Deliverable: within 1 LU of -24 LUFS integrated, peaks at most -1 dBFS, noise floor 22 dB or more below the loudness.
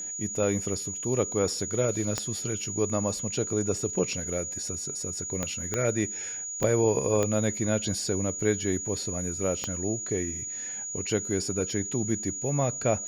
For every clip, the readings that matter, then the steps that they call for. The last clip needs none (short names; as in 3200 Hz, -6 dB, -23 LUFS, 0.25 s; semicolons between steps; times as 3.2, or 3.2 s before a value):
clicks 6; steady tone 6800 Hz; tone level -33 dBFS; loudness -28.5 LUFS; peak -10.5 dBFS; loudness target -24.0 LUFS
-> de-click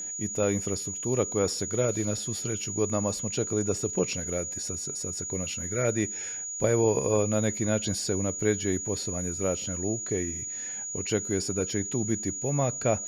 clicks 0; steady tone 6800 Hz; tone level -33 dBFS
-> notch 6800 Hz, Q 30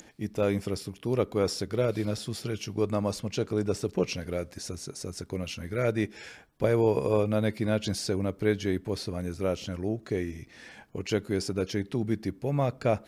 steady tone none; loudness -30.0 LUFS; peak -11.0 dBFS; loudness target -24.0 LUFS
-> gain +6 dB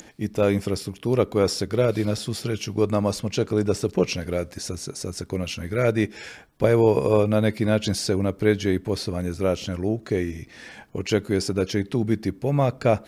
loudness -24.0 LUFS; peak -5.0 dBFS; noise floor -49 dBFS